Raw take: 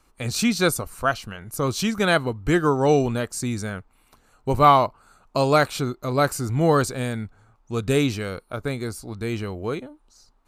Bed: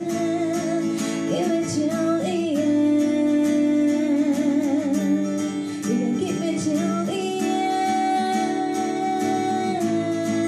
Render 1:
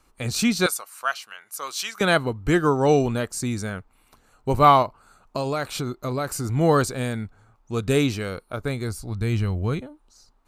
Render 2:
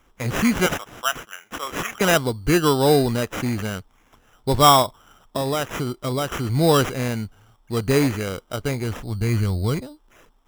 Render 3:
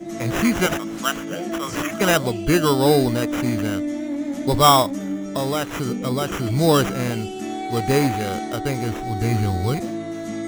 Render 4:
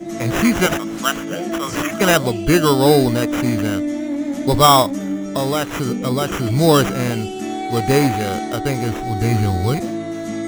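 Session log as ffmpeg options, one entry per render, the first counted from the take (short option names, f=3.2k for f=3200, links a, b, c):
-filter_complex "[0:a]asettb=1/sr,asplit=3[a][b][c];[a]atrim=end=0.664[d];[b]atrim=start=0.66:end=2.01,asetpts=PTS-STARTPTS,afade=t=in:d=0.004:c=qsin,afade=t=out:st=1.346:d=0.004:c=qsin,highpass=1.1k[e];[c]atrim=start=2.006[f];[d][e]acrossfade=d=0.004:c1=hsin:c2=qsin[g];[g][f]acrossfade=d=0.004:c1=qsin:c2=hsin,asettb=1/sr,asplit=3[h][i][j];[h]atrim=end=4.824[k];[i]atrim=start=4.82:end=6.45,asetpts=PTS-STARTPTS,afade=t=in:d=0.004:c=qsin,afade=t=out:st=1.626:d=0.004:c=qsin,acompressor=threshold=-22dB:ratio=6:attack=3.2:release=140:knee=1:detection=peak[l];[j]atrim=start=6.446[m];[k][l]acrossfade=d=0.004:c1=hsin:c2=qsin[n];[n][m]acrossfade=d=0.004:c1=qsin:c2=hsin,asettb=1/sr,asplit=3[o][p][q];[o]atrim=end=8.564[r];[p]atrim=start=8.56:end=9.81,asetpts=PTS-STARTPTS,afade=t=in:d=0.004:c=qsin,afade=t=out:st=1.246:d=0.004:c=qsin,asubboost=boost=11.5:cutoff=170[s];[q]atrim=start=9.806[t];[r][s]acrossfade=d=0.004:c1=hsin:c2=qsin[u];[u][t]acrossfade=d=0.004:c1=qsin:c2=hsin"
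-filter_complex "[0:a]asplit=2[a][b];[b]asoftclip=type=hard:threshold=-17.5dB,volume=-10dB[c];[a][c]amix=inputs=2:normalize=0,acrusher=samples=10:mix=1:aa=0.000001"
-filter_complex "[1:a]volume=-6dB[a];[0:a][a]amix=inputs=2:normalize=0"
-af "volume=3.5dB,alimiter=limit=-1dB:level=0:latency=1"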